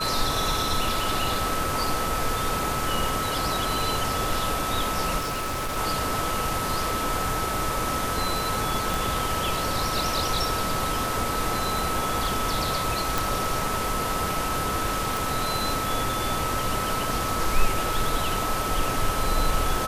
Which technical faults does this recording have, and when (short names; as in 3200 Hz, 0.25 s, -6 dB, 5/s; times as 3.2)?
tone 1300 Hz -29 dBFS
5.18–5.78 clipped -25.5 dBFS
8.94 pop
13.18 pop
15.17 pop